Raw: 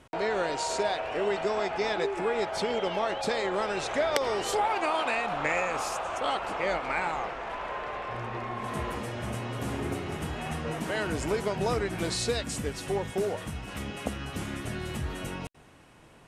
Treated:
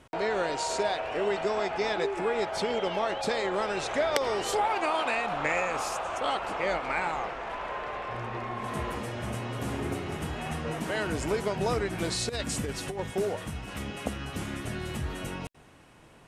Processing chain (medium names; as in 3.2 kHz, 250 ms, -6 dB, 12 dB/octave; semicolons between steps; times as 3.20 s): 12.29–13.00 s: compressor with a negative ratio -31 dBFS, ratio -0.5